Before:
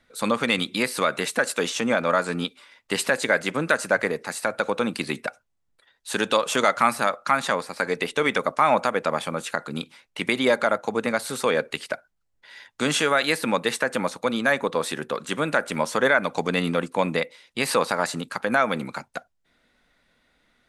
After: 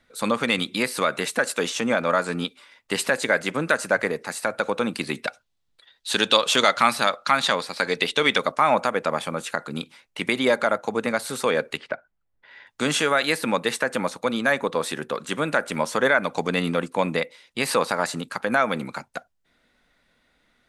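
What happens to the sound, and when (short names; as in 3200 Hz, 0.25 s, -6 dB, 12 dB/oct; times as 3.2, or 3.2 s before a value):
5.22–8.52 bell 3800 Hz +10 dB 1.1 oct
11.77–12.67 LPF 2500 Hz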